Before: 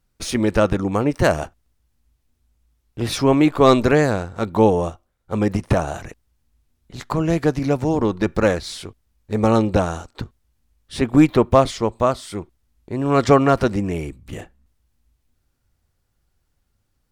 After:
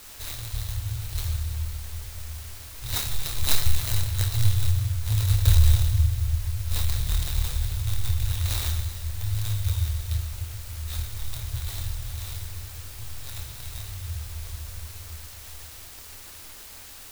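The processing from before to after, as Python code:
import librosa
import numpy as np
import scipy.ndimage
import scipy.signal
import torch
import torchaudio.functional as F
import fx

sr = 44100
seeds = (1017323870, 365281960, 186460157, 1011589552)

p1 = fx.bin_compress(x, sr, power=0.6)
p2 = fx.doppler_pass(p1, sr, speed_mps=19, closest_m=26.0, pass_at_s=5.51)
p3 = fx.high_shelf_res(p2, sr, hz=4600.0, db=-10.0, q=3.0)
p4 = fx.quant_dither(p3, sr, seeds[0], bits=6, dither='triangular')
p5 = p3 + (p4 * 10.0 ** (-10.0 / 20.0))
p6 = scipy.signal.sosfilt(scipy.signal.cheby1(5, 1.0, [100.0, 3900.0], 'bandstop', fs=sr, output='sos'), p5)
p7 = p6 + fx.room_flutter(p6, sr, wall_m=4.5, rt60_s=0.37, dry=0)
p8 = fx.room_shoebox(p7, sr, seeds[1], volume_m3=140.0, walls='hard', distance_m=0.38)
p9 = fx.clock_jitter(p8, sr, seeds[2], jitter_ms=0.054)
y = p9 * 10.0 ** (2.5 / 20.0)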